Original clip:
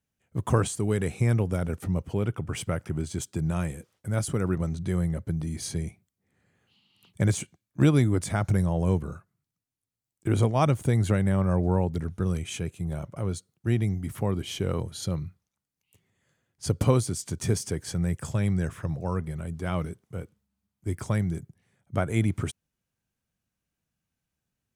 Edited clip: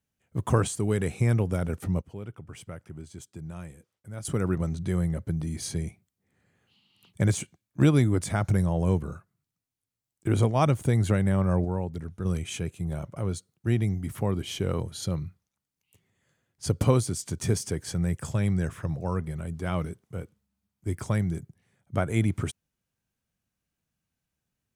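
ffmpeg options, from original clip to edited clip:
ffmpeg -i in.wav -filter_complex "[0:a]asplit=5[link_01][link_02][link_03][link_04][link_05];[link_01]atrim=end=2.012[link_06];[link_02]atrim=start=2.008:end=4.252,asetpts=PTS-STARTPTS,volume=-11.5dB[link_07];[link_03]atrim=start=4.248:end=11.652[link_08];[link_04]atrim=start=11.648:end=12.252,asetpts=PTS-STARTPTS,volume=-5.5dB[link_09];[link_05]atrim=start=12.248[link_10];[link_06][link_07]acrossfade=duration=0.004:curve1=hsin:curve2=hsin[link_11];[link_11][link_08]acrossfade=duration=0.004:curve1=hsin:curve2=hsin[link_12];[link_12][link_09]acrossfade=duration=0.004:curve1=hsin:curve2=hsin[link_13];[link_13][link_10]acrossfade=duration=0.004:curve1=hsin:curve2=hsin" out.wav

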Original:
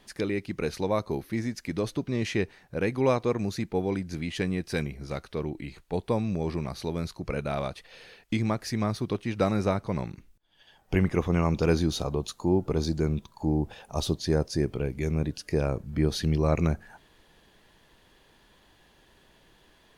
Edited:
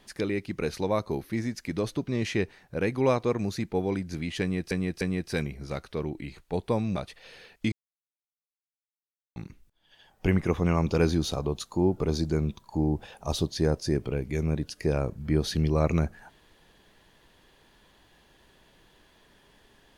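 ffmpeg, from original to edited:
ffmpeg -i in.wav -filter_complex "[0:a]asplit=6[link_01][link_02][link_03][link_04][link_05][link_06];[link_01]atrim=end=4.712[link_07];[link_02]atrim=start=4.408:end=4.712[link_08];[link_03]atrim=start=4.408:end=6.362[link_09];[link_04]atrim=start=7.638:end=8.4,asetpts=PTS-STARTPTS,afade=type=out:start_time=0.758:duration=0.004:curve=hsin[link_10];[link_05]atrim=start=8.4:end=10.04,asetpts=PTS-STARTPTS,volume=0[link_11];[link_06]atrim=start=10.04,asetpts=PTS-STARTPTS,afade=type=in:duration=0.004:curve=hsin[link_12];[link_07][link_08]acrossfade=duration=0.004:curve1=hsin:curve2=hsin[link_13];[link_13][link_09]acrossfade=duration=0.004:curve1=hsin:curve2=hsin[link_14];[link_10][link_11][link_12]concat=n=3:v=0:a=1[link_15];[link_14][link_15]acrossfade=duration=0.004:curve1=hsin:curve2=hsin" out.wav

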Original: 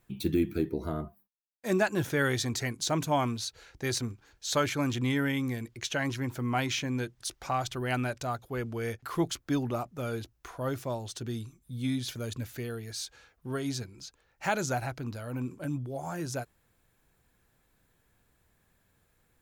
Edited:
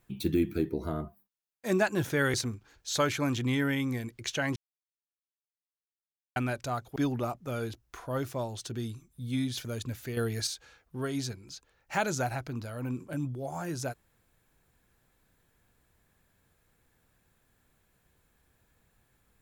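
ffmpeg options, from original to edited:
ffmpeg -i in.wav -filter_complex "[0:a]asplit=7[link_01][link_02][link_03][link_04][link_05][link_06][link_07];[link_01]atrim=end=2.342[link_08];[link_02]atrim=start=3.908:end=6.13,asetpts=PTS-STARTPTS,afade=type=out:start_time=2.218:duration=0.004:curve=hsin[link_09];[link_03]atrim=start=6.13:end=7.93,asetpts=PTS-STARTPTS,volume=0[link_10];[link_04]atrim=start=7.93:end=8.532,asetpts=PTS-STARTPTS,afade=type=in:duration=0.004:curve=hsin[link_11];[link_05]atrim=start=9.468:end=12.682[link_12];[link_06]atrim=start=12.678:end=12.982,asetpts=PTS-STARTPTS,volume=7.5dB[link_13];[link_07]atrim=start=12.978[link_14];[link_09][link_10][link_11]concat=n=3:v=0:a=1[link_15];[link_08][link_15]acrossfade=duration=0.004:curve1=hsin:curve2=hsin[link_16];[link_16][link_12]acrossfade=duration=0.004:curve1=hsin:curve2=hsin[link_17];[link_17][link_13]acrossfade=duration=0.004:curve1=hsin:curve2=hsin[link_18];[link_18][link_14]acrossfade=duration=0.004:curve1=hsin:curve2=hsin" out.wav

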